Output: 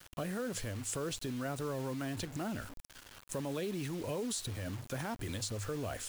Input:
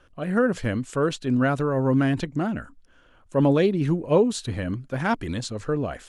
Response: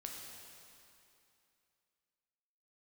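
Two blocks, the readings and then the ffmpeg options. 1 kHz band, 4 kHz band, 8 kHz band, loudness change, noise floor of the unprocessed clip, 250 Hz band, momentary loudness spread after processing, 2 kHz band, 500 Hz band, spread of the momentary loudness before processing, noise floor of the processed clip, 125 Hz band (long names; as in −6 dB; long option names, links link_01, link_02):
−14.5 dB, −6.0 dB, 0.0 dB, −14.5 dB, −57 dBFS, −16.0 dB, 5 LU, −14.0 dB, −15.5 dB, 9 LU, −57 dBFS, −14.0 dB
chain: -filter_complex "[0:a]equalizer=frequency=100:width_type=o:width=0.27:gain=14,acompressor=threshold=-26dB:ratio=5,alimiter=level_in=2dB:limit=-24dB:level=0:latency=1:release=31,volume=-2dB,acrossover=split=360|920[link_01][link_02][link_03];[link_01]acompressor=threshold=-39dB:ratio=4[link_04];[link_02]acompressor=threshold=-38dB:ratio=4[link_05];[link_03]acompressor=threshold=-51dB:ratio=4[link_06];[link_04][link_05][link_06]amix=inputs=3:normalize=0,crystalizer=i=5:c=0,acrusher=bits=7:mix=0:aa=0.000001,volume=-1dB"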